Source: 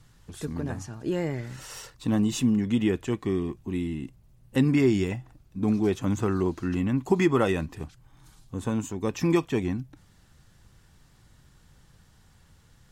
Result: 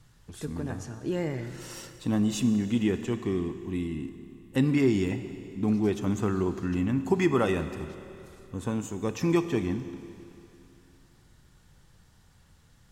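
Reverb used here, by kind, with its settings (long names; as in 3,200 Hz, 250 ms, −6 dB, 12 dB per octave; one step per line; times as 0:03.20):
four-comb reverb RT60 2.8 s, combs from 26 ms, DRR 10 dB
level −2 dB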